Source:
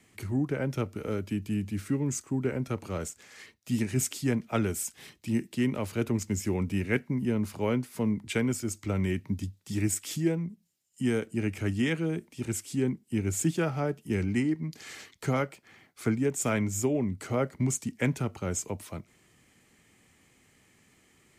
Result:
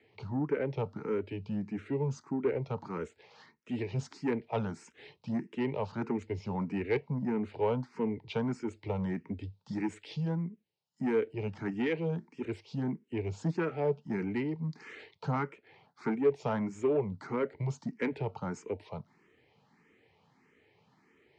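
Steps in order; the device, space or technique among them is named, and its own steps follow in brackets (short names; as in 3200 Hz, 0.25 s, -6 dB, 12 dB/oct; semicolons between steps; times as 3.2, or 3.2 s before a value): barber-pole phaser into a guitar amplifier (endless phaser +1.6 Hz; soft clip -24.5 dBFS, distortion -17 dB; speaker cabinet 98–4400 Hz, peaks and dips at 150 Hz +4 dB, 440 Hz +9 dB, 900 Hz +10 dB, 3300 Hz -4 dB); gain -1.5 dB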